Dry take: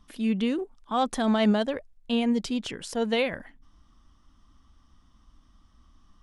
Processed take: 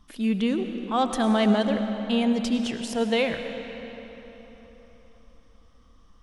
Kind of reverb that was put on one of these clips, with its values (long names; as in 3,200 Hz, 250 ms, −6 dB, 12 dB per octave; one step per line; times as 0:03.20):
comb and all-pass reverb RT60 3.9 s, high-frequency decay 0.75×, pre-delay 60 ms, DRR 6.5 dB
level +1.5 dB